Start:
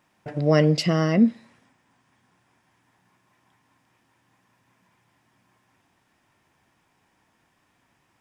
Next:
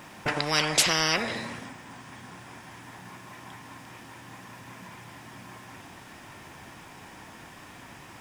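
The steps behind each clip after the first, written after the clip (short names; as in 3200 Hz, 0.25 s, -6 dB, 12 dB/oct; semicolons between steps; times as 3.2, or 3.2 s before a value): spectral compressor 10:1; gain +1.5 dB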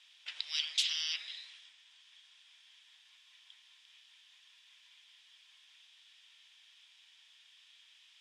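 ladder band-pass 3700 Hz, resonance 65%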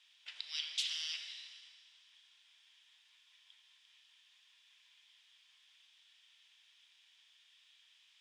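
Schroeder reverb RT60 2 s, combs from 27 ms, DRR 7.5 dB; gain -5.5 dB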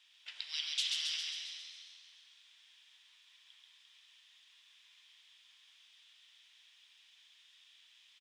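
frequency-shifting echo 0.135 s, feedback 59%, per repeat +86 Hz, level -3.5 dB; gain +1 dB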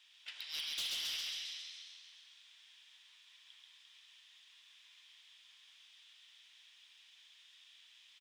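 soft clip -36.5 dBFS, distortion -9 dB; gain +1.5 dB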